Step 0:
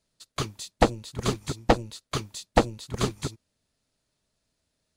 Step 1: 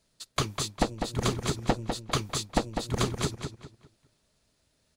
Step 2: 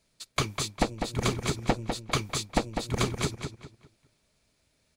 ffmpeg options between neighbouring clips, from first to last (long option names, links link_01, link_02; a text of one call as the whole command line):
ffmpeg -i in.wav -filter_complex "[0:a]acompressor=threshold=-29dB:ratio=6,asplit=2[link_01][link_02];[link_02]adelay=200,lowpass=frequency=4600:poles=1,volume=-6dB,asplit=2[link_03][link_04];[link_04]adelay=200,lowpass=frequency=4600:poles=1,volume=0.31,asplit=2[link_05][link_06];[link_06]adelay=200,lowpass=frequency=4600:poles=1,volume=0.31,asplit=2[link_07][link_08];[link_08]adelay=200,lowpass=frequency=4600:poles=1,volume=0.31[link_09];[link_03][link_05][link_07][link_09]amix=inputs=4:normalize=0[link_10];[link_01][link_10]amix=inputs=2:normalize=0,volume=5.5dB" out.wav
ffmpeg -i in.wav -af "equalizer=frequency=2300:width=7.8:gain=8" out.wav